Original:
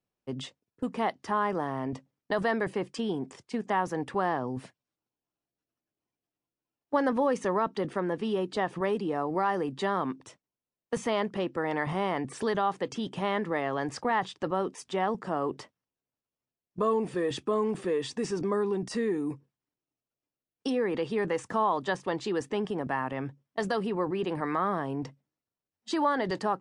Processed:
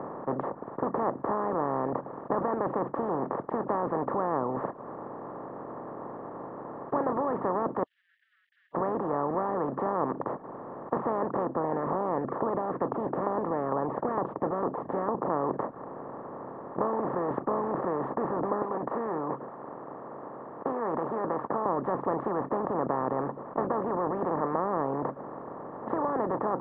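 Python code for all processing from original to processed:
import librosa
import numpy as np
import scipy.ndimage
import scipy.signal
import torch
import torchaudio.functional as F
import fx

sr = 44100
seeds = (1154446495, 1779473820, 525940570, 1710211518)

y = fx.chain(x, sr, fx.delta_hold(step_db=-42.5),
    fx.overload_stage(gain_db=35.0),
    fx.cheby1_highpass(hz=2800.0, order=10), at=(7.83, 8.75))
y = fx.chain(y, sr, fx.high_shelf(hz=3200.0, db=-7.0),
    fx.filter_lfo_notch(shape='saw_down', hz=2.2, low_hz=710.0, high_hz=2800.0, q=0.81), at=(11.45, 15.3))
y = fx.chain(y, sr, fx.highpass(hz=900.0, slope=6),
    fx.doubler(ms=13.0, db=-12.5), at=(18.62, 21.66))
y = fx.bin_compress(y, sr, power=0.2)
y = scipy.signal.sosfilt(scipy.signal.butter(4, 1200.0, 'lowpass', fs=sr, output='sos'), y)
y = fx.dereverb_blind(y, sr, rt60_s=0.53)
y = y * 10.0 ** (-7.5 / 20.0)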